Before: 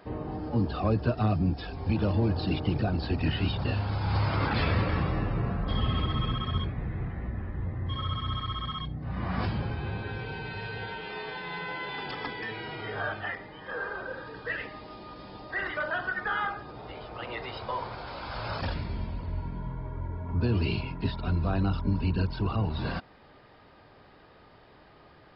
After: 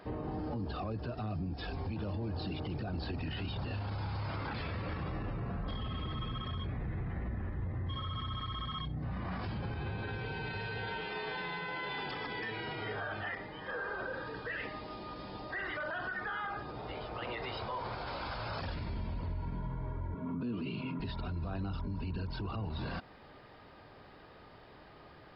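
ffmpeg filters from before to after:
ffmpeg -i in.wav -filter_complex "[0:a]asettb=1/sr,asplit=3[link_01][link_02][link_03];[link_01]atrim=end=20.144[link_04];[link_02]atrim=start=20.14:end=21,asetpts=PTS-STARTPTS,afade=type=in:duration=0.004:curve=qsin,afade=type=out:start_time=0.856:duration=0.004:curve=qsin,highpass=frequency=140:width=0.5412,highpass=frequency=140:width=1.3066,equalizer=frequency=150:width_type=q:width=4:gain=5,equalizer=frequency=250:width_type=q:width=4:gain=10,equalizer=frequency=810:width_type=q:width=4:gain=-9,equalizer=frequency=1200:width_type=q:width=4:gain=5,equalizer=frequency=1800:width_type=q:width=4:gain=-7,lowpass=frequency=3800:width=0.5412,lowpass=frequency=3800:width=1.3066[link_05];[link_03]atrim=start=20.996[link_06];[link_04][link_05]acrossfade=duration=0.004:curve1=hsin:curve2=qsin[link_07];[link_07][link_06]acrossfade=duration=0.004:curve1=qsin:curve2=hsin,acompressor=threshold=-31dB:ratio=2.5,alimiter=level_in=6.5dB:limit=-24dB:level=0:latency=1:release=25,volume=-6.5dB" out.wav

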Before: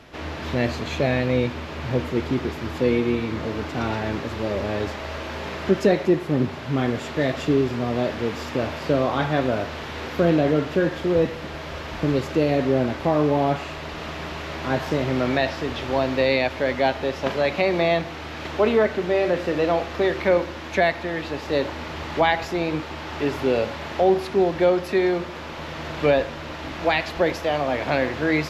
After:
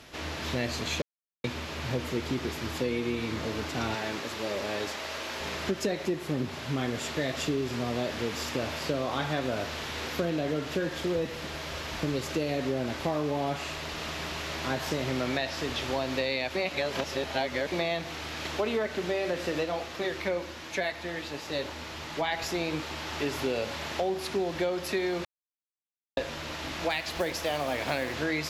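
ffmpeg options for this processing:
ffmpeg -i in.wav -filter_complex "[0:a]asettb=1/sr,asplit=3[link_01][link_02][link_03];[link_01]atrim=end=3.954[link_04];[link_02]atrim=start=3.95:end=5.41,asetpts=PTS-STARTPTS,afade=type=in:duration=0.004:curve=qsin,afade=type=out:start_time=1.456:duration=0.004:curve=qsin,highpass=frequency=300:poles=1[link_05];[link_03]atrim=start=5.406[link_06];[link_04][link_05]acrossfade=duration=0.004:curve1=hsin:curve2=qsin[link_07];[link_07][link_06]acrossfade=duration=0.004:curve1=qsin:curve2=hsin,asplit=3[link_08][link_09][link_10];[link_08]afade=type=out:start_time=19.63:duration=0.02[link_11];[link_09]flanger=delay=5.8:depth=6.2:regen=-45:speed=1.4:shape=triangular,afade=type=in:start_time=19.63:duration=0.02,afade=type=out:start_time=22.31:duration=0.02[link_12];[link_10]afade=type=in:start_time=22.31:duration=0.02[link_13];[link_11][link_12][link_13]amix=inputs=3:normalize=0,asettb=1/sr,asplit=3[link_14][link_15][link_16];[link_14]atrim=end=26.904[link_17];[link_15]atrim=start=26.9:end=28.14,asetpts=PTS-STARTPTS,afade=type=in:duration=0.004:curve=qsin,afade=type=out:start_time=1.236:duration=0.004:curve=qsin,acrusher=bits=8:mode=log:mix=0:aa=0.000001[link_18];[link_16]atrim=start=28.136[link_19];[link_17][link_18]acrossfade=duration=0.004:curve1=hsin:curve2=qsin[link_20];[link_20][link_19]acrossfade=duration=0.004:curve1=qsin:curve2=hsin,asplit=7[link_21][link_22][link_23][link_24][link_25][link_26][link_27];[link_21]atrim=end=1.02,asetpts=PTS-STARTPTS,afade=type=out:start_time=1.016:duration=0.004:curve=hsin[link_28];[link_22]atrim=start=1.02:end=1.44,asetpts=PTS-STARTPTS,volume=0[link_29];[link_23]atrim=start=1.44:end=16.552,asetpts=PTS-STARTPTS,afade=type=in:duration=0.004:curve=hsin[link_30];[link_24]atrim=start=16.548:end=17.722,asetpts=PTS-STARTPTS,areverse[link_31];[link_25]atrim=start=17.718:end=25.25,asetpts=PTS-STARTPTS,afade=type=out:start_time=7.528:duration=0.004:curve=hsin[link_32];[link_26]atrim=start=25.25:end=26.17,asetpts=PTS-STARTPTS,volume=0[link_33];[link_27]atrim=start=26.17,asetpts=PTS-STARTPTS,afade=type=in:duration=0.004:curve=hsin[link_34];[link_28][link_29][link_30]concat=n=3:v=0:a=1[link_35];[link_35][link_31]acrossfade=duration=0.004:curve1=hsin:curve2=hsin[link_36];[link_32][link_33][link_34]concat=n=3:v=0:a=1[link_37];[link_36][link_37]acrossfade=duration=0.004:curve1=hsin:curve2=hsin,equalizer=frequency=10000:width_type=o:width=2.6:gain=12.5,acompressor=threshold=-20dB:ratio=6,volume=-5.5dB" out.wav

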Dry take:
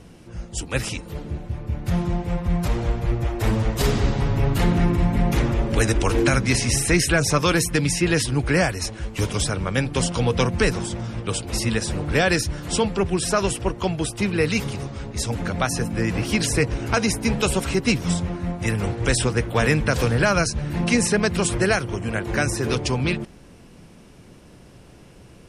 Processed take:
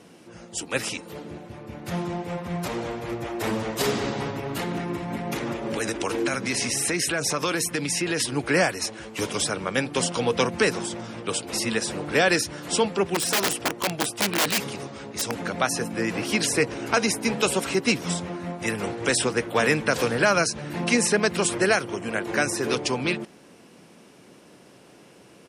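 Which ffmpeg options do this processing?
ffmpeg -i in.wav -filter_complex "[0:a]asplit=2[link_01][link_02];[link_02]afade=type=in:start_time=1.97:duration=0.01,afade=type=out:start_time=2.69:duration=0.01,aecho=0:1:460|920|1380|1840|2300|2760:0.141254|0.0847523|0.0508514|0.0305108|0.0183065|0.0109839[link_03];[link_01][link_03]amix=inputs=2:normalize=0,asettb=1/sr,asplit=3[link_04][link_05][link_06];[link_04]atrim=end=4.304[link_07];[link_05]atrim=start=4.3:end=8.2,asetpts=PTS-STARTPTS,afade=type=in:duration=0.004:curve=qsin,afade=type=out:start_time=3.896:duration=0.004:curve=qsin,acompressor=threshold=-19dB:ratio=6:attack=3.2:release=140:knee=1:detection=peak[link_08];[link_06]atrim=start=8.196[link_09];[link_07][link_08]acrossfade=duration=0.004:curve1=hsin:curve2=qsin[link_10];[link_10][link_09]acrossfade=duration=0.004:curve1=qsin:curve2=hsin,asplit=3[link_11][link_12][link_13];[link_11]afade=type=out:start_time=13.14:duration=0.02[link_14];[link_12]aeval=exprs='(mod(6.31*val(0)+1,2)-1)/6.31':channel_layout=same,afade=type=in:start_time=13.14:duration=0.02,afade=type=out:start_time=15.31:duration=0.02[link_15];[link_13]afade=type=in:start_time=15.31:duration=0.02[link_16];[link_14][link_15][link_16]amix=inputs=3:normalize=0,highpass=240" out.wav

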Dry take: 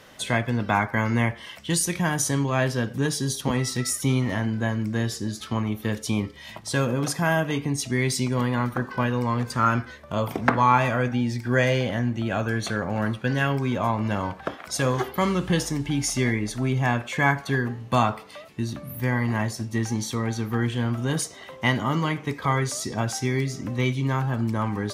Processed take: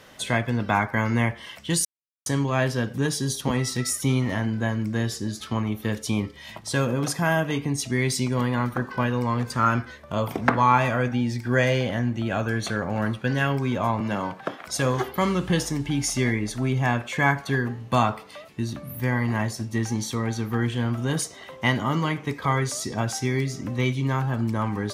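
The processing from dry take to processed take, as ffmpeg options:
ffmpeg -i in.wav -filter_complex "[0:a]asettb=1/sr,asplit=3[link_01][link_02][link_03];[link_01]atrim=end=14.004[link_04];[link_02]atrim=start=14:end=14.6,asetpts=PTS-STARTPTS,afade=type=in:duration=0.004:curve=qsin,afade=type=out:start_time=0.596:duration=0.004:curve=qsin,highpass=frequency=120:width=0.5412,highpass=frequency=120:width=1.3066[link_05];[link_03]atrim=start=14.596[link_06];[link_04][link_05]acrossfade=duration=0.004:curve1=hsin:curve2=qsin[link_07];[link_07][link_06]acrossfade=duration=0.004:curve1=qsin:curve2=hsin,asplit=3[link_08][link_09][link_10];[link_08]atrim=end=1.85,asetpts=PTS-STARTPTS,afade=type=out:start_time=1.846:duration=0.004:curve=hsin[link_11];[link_09]atrim=start=1.85:end=2.26,asetpts=PTS-STARTPTS,volume=0[link_12];[link_10]atrim=start=2.26,asetpts=PTS-STARTPTS,afade=type=in:duration=0.004:curve=hsin[link_13];[link_11][link_12][link_13]concat=n=3:v=0:a=1" out.wav

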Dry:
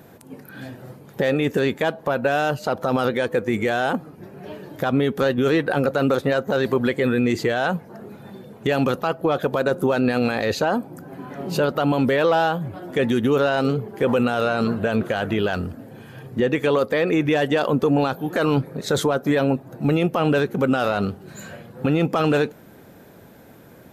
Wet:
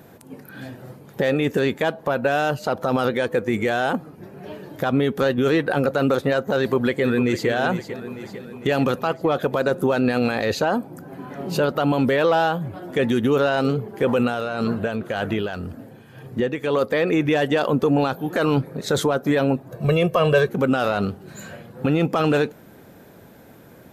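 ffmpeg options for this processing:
ffmpeg -i in.wav -filter_complex "[0:a]asplit=2[link_01][link_02];[link_02]afade=type=in:start_time=6.59:duration=0.01,afade=type=out:start_time=7.48:duration=0.01,aecho=0:1:450|900|1350|1800|2250|2700|3150:0.298538|0.179123|0.107474|0.0644843|0.0386906|0.0232143|0.0139286[link_03];[link_01][link_03]amix=inputs=2:normalize=0,asplit=3[link_04][link_05][link_06];[link_04]afade=type=out:start_time=14.09:duration=0.02[link_07];[link_05]tremolo=f=1.9:d=0.51,afade=type=in:start_time=14.09:duration=0.02,afade=type=out:start_time=16.91:duration=0.02[link_08];[link_06]afade=type=in:start_time=16.91:duration=0.02[link_09];[link_07][link_08][link_09]amix=inputs=3:normalize=0,asettb=1/sr,asplit=3[link_10][link_11][link_12];[link_10]atrim=end=19.714[link_13];[link_11]atrim=start=19.71:end=20.49,asetpts=PTS-STARTPTS,afade=type=in:duration=0.004:curve=qsin,afade=type=out:start_time=0.776:duration=0.004:curve=qsin,aecho=1:1:1.8:0.89,atrim=end_sample=34398[link_14];[link_12]atrim=start=20.486[link_15];[link_13][link_14]acrossfade=duration=0.004:curve1=hsin:curve2=qsin[link_16];[link_16][link_15]acrossfade=duration=0.004:curve1=qsin:curve2=hsin" out.wav

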